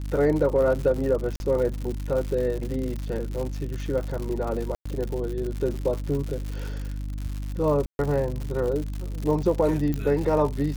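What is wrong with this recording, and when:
surface crackle 140 per second −30 dBFS
mains hum 50 Hz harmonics 6 −31 dBFS
0:01.36–0:01.40: drop-out 41 ms
0:04.75–0:04.86: drop-out 105 ms
0:07.86–0:07.99: drop-out 131 ms
0:09.94: click −16 dBFS

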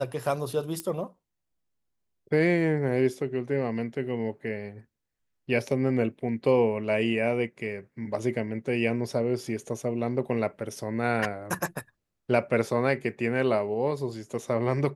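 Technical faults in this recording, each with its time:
0:00.80: click −17 dBFS

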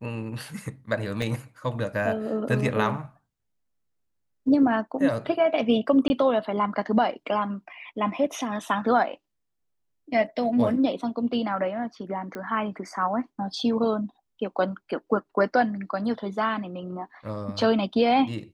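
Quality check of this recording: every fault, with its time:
0:01.22: drop-out 2.2 ms
0:06.08–0:06.10: drop-out 20 ms
0:12.35: click −22 dBFS

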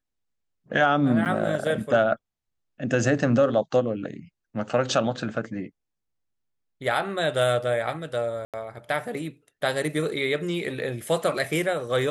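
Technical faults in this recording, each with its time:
0:01.25–0:01.26: drop-out 8 ms
0:08.45–0:08.54: drop-out 87 ms

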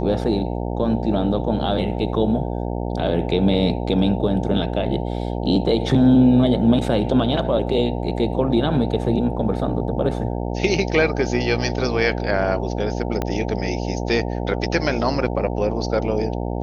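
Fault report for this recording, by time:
mains buzz 60 Hz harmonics 15 −25 dBFS
0:13.22: click −10 dBFS

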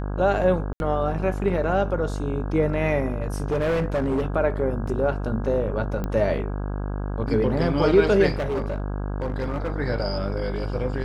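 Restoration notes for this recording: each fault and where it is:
mains buzz 50 Hz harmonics 33 −28 dBFS
0:00.73–0:00.80: drop-out 71 ms
0:03.08–0:04.26: clipping −19.5 dBFS
0:04.87–0:04.88: drop-out 5.1 ms
0:06.04: click −16 dBFS
0:08.34–0:09.72: clipping −22 dBFS

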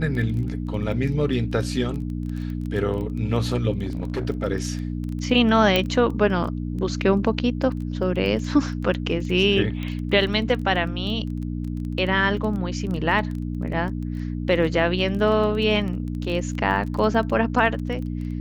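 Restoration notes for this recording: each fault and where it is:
surface crackle 15 per second −29 dBFS
mains hum 60 Hz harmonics 5 −28 dBFS
0:03.83–0:04.27: clipping −21.5 dBFS
0:05.76: click −6 dBFS
0:09.83: click −19 dBFS

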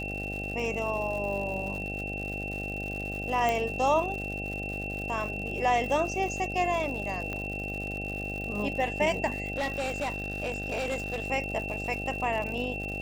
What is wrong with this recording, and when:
mains buzz 50 Hz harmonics 16 −37 dBFS
surface crackle 170 per second −36 dBFS
whistle 2,700 Hz −35 dBFS
0:03.49: click −15 dBFS
0:07.33: click −21 dBFS
0:09.54–0:11.24: clipping −26.5 dBFS

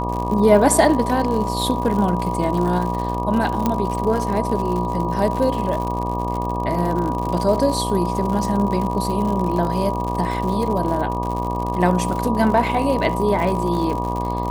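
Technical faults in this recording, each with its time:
mains buzz 60 Hz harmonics 20 −25 dBFS
surface crackle 98 per second −25 dBFS
whistle 970 Hz −25 dBFS
0:03.66: click −6 dBFS

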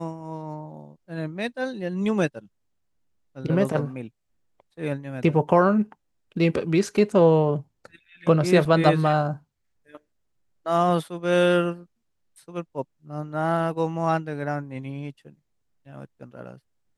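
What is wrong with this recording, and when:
0:08.65: drop-out 4 ms

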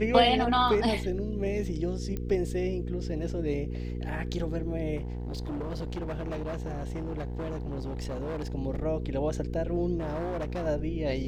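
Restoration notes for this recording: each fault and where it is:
mains hum 60 Hz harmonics 8 −34 dBFS
0:02.17: click −21 dBFS
0:04.96–0:08.53: clipping −30.5 dBFS
0:09.98–0:10.67: clipping −29 dBFS

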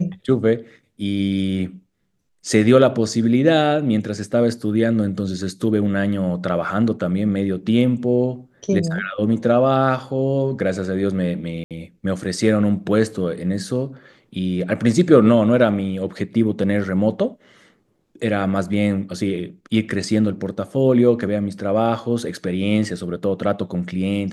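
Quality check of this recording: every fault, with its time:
0:11.64–0:11.71: drop-out 67 ms

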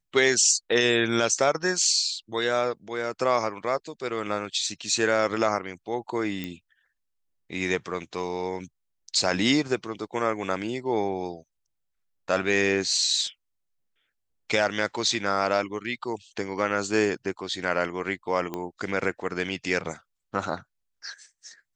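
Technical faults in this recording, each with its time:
0:06.44: click −18 dBFS
0:18.54: click −18 dBFS

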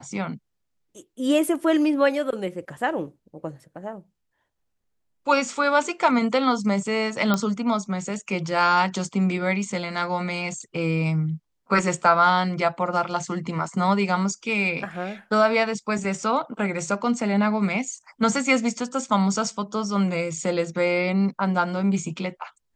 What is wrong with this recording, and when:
0:07.34: click −8 dBFS

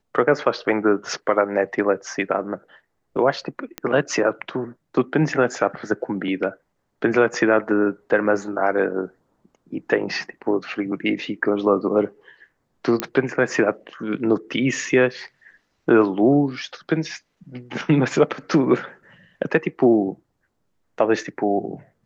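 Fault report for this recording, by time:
0:03.78: click −11 dBFS
0:13.00: click −5 dBFS

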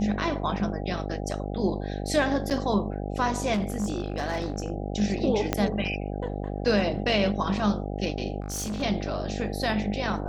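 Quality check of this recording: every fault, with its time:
mains buzz 50 Hz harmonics 16 −32 dBFS
0:02.50–0:02.51: drop-out 8 ms
0:03.53–0:04.70: clipping −23 dBFS
0:05.53: click −8 dBFS
0:08.40–0:08.83: clipping −28 dBFS

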